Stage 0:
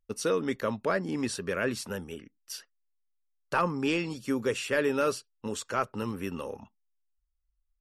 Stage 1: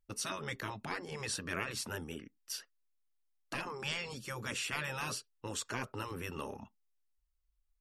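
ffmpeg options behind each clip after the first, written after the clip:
-af "afftfilt=real='re*lt(hypot(re,im),0.1)':imag='im*lt(hypot(re,im),0.1)':win_size=1024:overlap=0.75,volume=0.891"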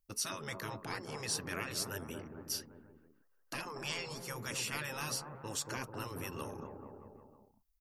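-filter_complex "[0:a]acrossover=split=1300[s0][s1];[s0]aecho=1:1:230|437|623.3|791|941.9:0.631|0.398|0.251|0.158|0.1[s2];[s1]aexciter=amount=1.2:drive=8.7:freq=4600[s3];[s2][s3]amix=inputs=2:normalize=0,volume=0.75"

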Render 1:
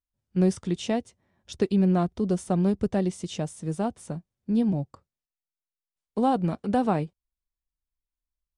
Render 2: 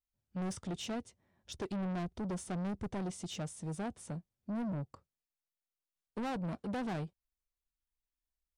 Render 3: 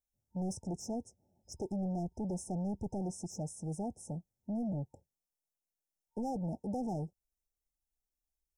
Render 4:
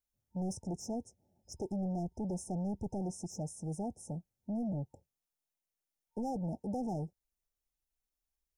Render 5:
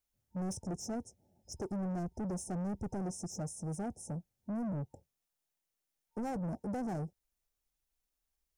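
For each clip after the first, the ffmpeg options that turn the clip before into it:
-af "asoftclip=type=tanh:threshold=0.0316,volume=0.596"
-af "afftfilt=real='re*(1-between(b*sr/4096,910,5100))':imag='im*(1-between(b*sr/4096,910,5100))':win_size=4096:overlap=0.75,volume=1.12"
-af "bandreject=f=7900:w=23"
-af "asoftclip=type=tanh:threshold=0.015,volume=1.41"

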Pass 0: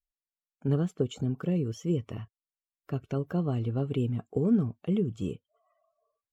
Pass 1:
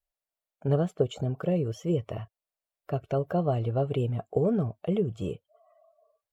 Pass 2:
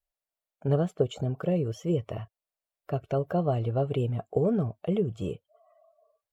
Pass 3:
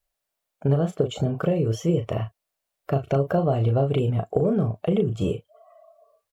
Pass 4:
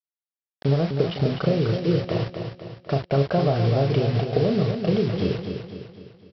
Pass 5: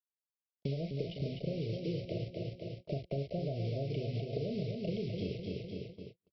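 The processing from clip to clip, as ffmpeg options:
-af "equalizer=f=250:t=o:w=0.67:g=-8,equalizer=f=630:t=o:w=0.67:g=12,equalizer=f=6300:t=o:w=0.67:g=-4,volume=1.26"
-af anull
-filter_complex "[0:a]acompressor=threshold=0.0447:ratio=6,asplit=2[s0][s1];[s1]adelay=36,volume=0.447[s2];[s0][s2]amix=inputs=2:normalize=0,volume=2.66"
-af "aresample=11025,acrusher=bits=5:mix=0:aa=0.000001,aresample=44100,aecho=1:1:252|504|756|1008|1260|1512:0.447|0.214|0.103|0.0494|0.0237|0.0114"
-filter_complex "[0:a]acrossover=split=83|760[s0][s1][s2];[s0]acompressor=threshold=0.00562:ratio=4[s3];[s1]acompressor=threshold=0.0251:ratio=4[s4];[s2]acompressor=threshold=0.00562:ratio=4[s5];[s3][s4][s5]amix=inputs=3:normalize=0,asuperstop=centerf=1200:order=20:qfactor=0.86,agate=range=0.00794:threshold=0.00708:ratio=16:detection=peak,volume=0.596"

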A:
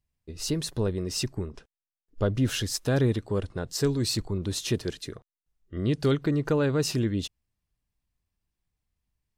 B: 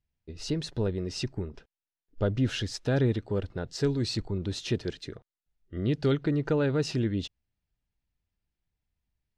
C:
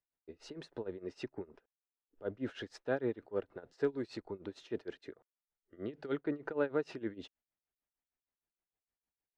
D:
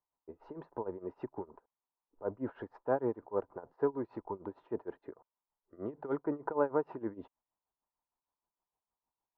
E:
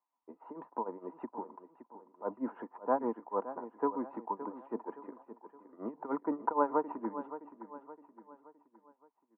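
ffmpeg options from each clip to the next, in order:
-af "lowpass=4700,bandreject=f=1100:w=6.9,volume=0.841"
-filter_complex "[0:a]acrossover=split=290 2200:gain=0.1 1 0.158[s0][s1][s2];[s0][s1][s2]amix=inputs=3:normalize=0,tremolo=f=6.5:d=0.9,volume=0.891"
-af "lowpass=f=970:t=q:w=4.9"
-af "highpass=f=230:w=0.5412,highpass=f=230:w=1.3066,equalizer=f=230:t=q:w=4:g=4,equalizer=f=390:t=q:w=4:g=-9,equalizer=f=570:t=q:w=4:g=-4,equalizer=f=1000:t=q:w=4:g=7,equalizer=f=1600:t=q:w=4:g=-6,lowpass=f=2200:w=0.5412,lowpass=f=2200:w=1.3066,aecho=1:1:568|1136|1704|2272:0.224|0.0985|0.0433|0.0191,volume=1.41"

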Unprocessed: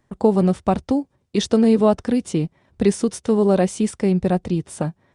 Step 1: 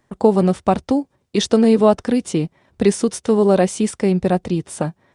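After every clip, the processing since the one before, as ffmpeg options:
-af "lowshelf=f=190:g=-6.5,volume=1.58"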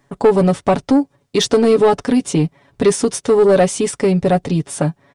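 -af "aecho=1:1:7.1:0.68,acontrast=70,volume=0.668"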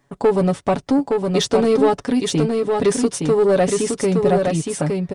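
-af "aecho=1:1:866:0.631,volume=0.631"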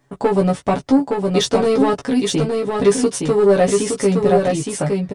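-filter_complex "[0:a]asplit=2[s0][s1];[s1]adelay=15,volume=0.668[s2];[s0][s2]amix=inputs=2:normalize=0"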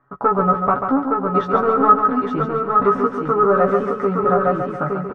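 -filter_complex "[0:a]lowpass=f=1300:t=q:w=15,asplit=2[s0][s1];[s1]aecho=0:1:140|280|420|560|700:0.473|0.208|0.0916|0.0403|0.0177[s2];[s0][s2]amix=inputs=2:normalize=0,volume=0.531"

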